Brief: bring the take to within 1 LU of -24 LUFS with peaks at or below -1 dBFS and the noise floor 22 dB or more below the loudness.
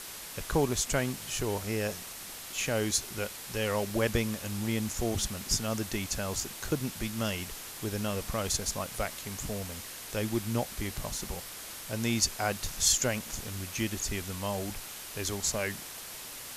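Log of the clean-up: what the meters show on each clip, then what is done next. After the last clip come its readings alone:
dropouts 3; longest dropout 2.2 ms; noise floor -43 dBFS; noise floor target -54 dBFS; loudness -32.0 LUFS; peak -12.0 dBFS; loudness target -24.0 LUFS
-> interpolate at 3.9/12.98/14.75, 2.2 ms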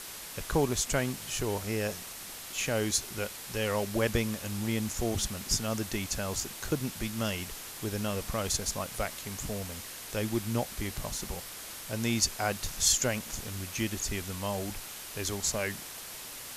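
dropouts 0; noise floor -43 dBFS; noise floor target -54 dBFS
-> noise print and reduce 11 dB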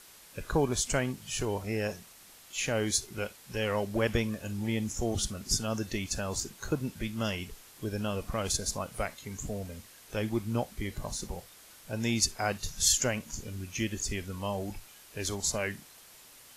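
noise floor -54 dBFS; noise floor target -55 dBFS
-> noise print and reduce 6 dB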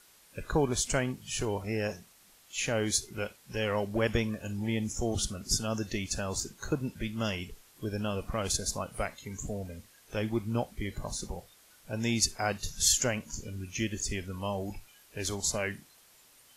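noise floor -60 dBFS; loudness -32.5 LUFS; peak -12.0 dBFS; loudness target -24.0 LUFS
-> gain +8.5 dB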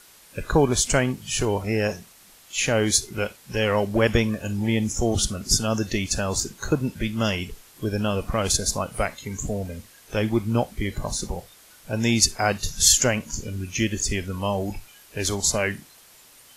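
loudness -24.0 LUFS; peak -3.5 dBFS; noise floor -52 dBFS

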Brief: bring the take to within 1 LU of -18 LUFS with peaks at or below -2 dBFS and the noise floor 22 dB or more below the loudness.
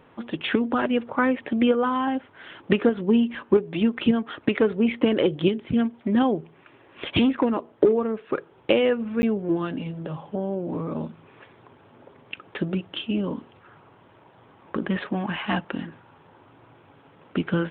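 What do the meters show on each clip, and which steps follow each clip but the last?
dropouts 1; longest dropout 10 ms; loudness -24.5 LUFS; peak -4.5 dBFS; loudness target -18.0 LUFS
-> interpolate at 9.22, 10 ms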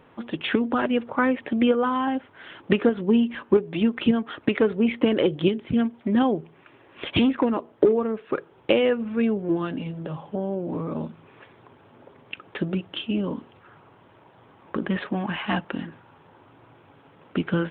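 dropouts 0; loudness -24.5 LUFS; peak -4.5 dBFS; loudness target -18.0 LUFS
-> gain +6.5 dB; limiter -2 dBFS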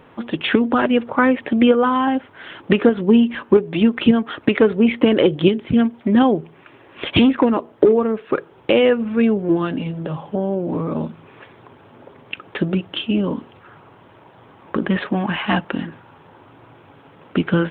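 loudness -18.5 LUFS; peak -2.0 dBFS; noise floor -48 dBFS

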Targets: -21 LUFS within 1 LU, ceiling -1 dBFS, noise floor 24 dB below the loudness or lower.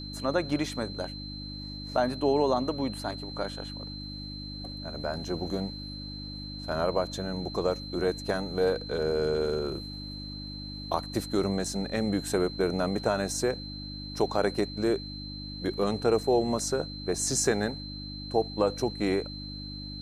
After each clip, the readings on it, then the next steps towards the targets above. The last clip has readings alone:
hum 50 Hz; harmonics up to 300 Hz; hum level -38 dBFS; steady tone 4100 Hz; tone level -41 dBFS; loudness -30.5 LUFS; peak -11.0 dBFS; loudness target -21.0 LUFS
-> de-hum 50 Hz, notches 6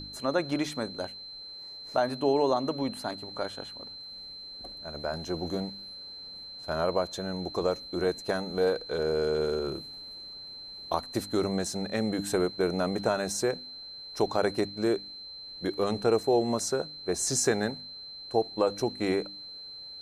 hum none; steady tone 4100 Hz; tone level -41 dBFS
-> notch 4100 Hz, Q 30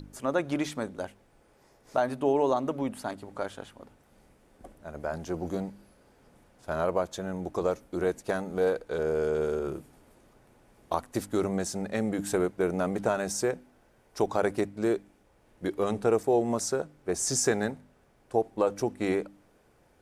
steady tone none; loudness -30.0 LUFS; peak -11.5 dBFS; loudness target -21.0 LUFS
-> gain +9 dB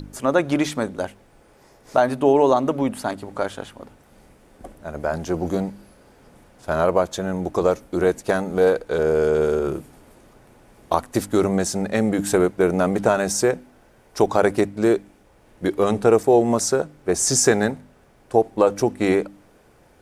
loudness -21.0 LUFS; peak -2.5 dBFS; noise floor -54 dBFS

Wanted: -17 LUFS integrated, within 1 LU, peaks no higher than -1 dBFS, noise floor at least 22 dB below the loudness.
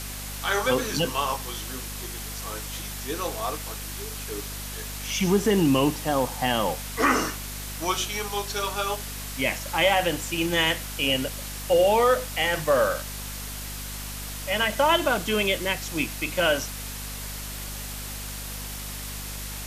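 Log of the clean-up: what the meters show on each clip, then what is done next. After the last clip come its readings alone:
hum 50 Hz; harmonics up to 250 Hz; hum level -35 dBFS; noise floor -35 dBFS; noise floor target -48 dBFS; loudness -26.0 LUFS; peak -7.5 dBFS; loudness target -17.0 LUFS
-> de-hum 50 Hz, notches 5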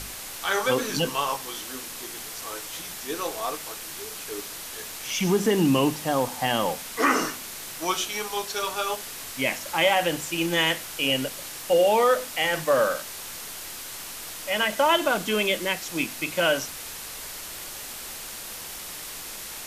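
hum none; noise floor -38 dBFS; noise floor target -49 dBFS
-> denoiser 11 dB, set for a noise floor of -38 dBFS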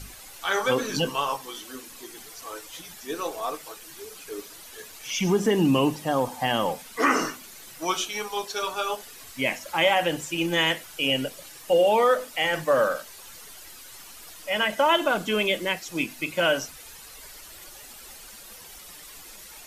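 noise floor -45 dBFS; noise floor target -47 dBFS
-> denoiser 6 dB, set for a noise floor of -45 dBFS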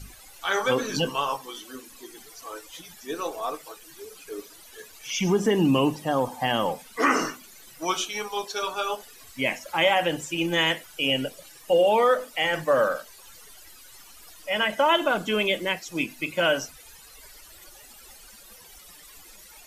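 noise floor -49 dBFS; loudness -25.0 LUFS; peak -8.0 dBFS; loudness target -17.0 LUFS
-> gain +8 dB; limiter -1 dBFS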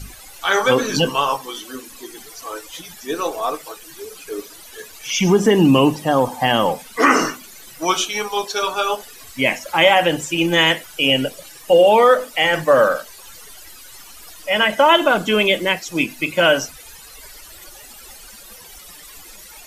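loudness -17.0 LUFS; peak -1.0 dBFS; noise floor -41 dBFS

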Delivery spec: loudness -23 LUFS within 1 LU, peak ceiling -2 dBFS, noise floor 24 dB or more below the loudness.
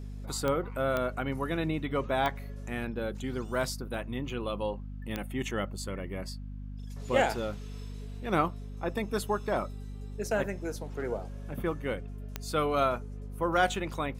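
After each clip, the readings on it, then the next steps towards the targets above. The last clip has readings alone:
clicks 5; hum 50 Hz; harmonics up to 250 Hz; hum level -38 dBFS; loudness -32.5 LUFS; peak -12.5 dBFS; loudness target -23.0 LUFS
-> de-click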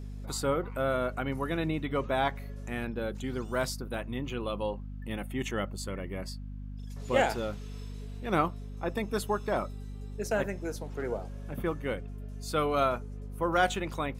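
clicks 0; hum 50 Hz; harmonics up to 250 Hz; hum level -38 dBFS
-> notches 50/100/150/200/250 Hz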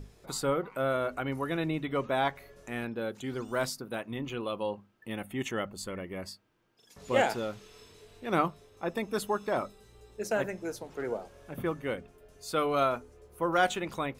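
hum none; loudness -32.5 LUFS; peak -12.5 dBFS; loudness target -23.0 LUFS
-> gain +9.5 dB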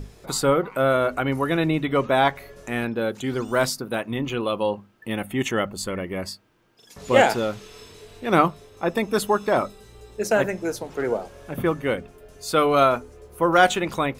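loudness -23.0 LUFS; peak -3.0 dBFS; noise floor -53 dBFS

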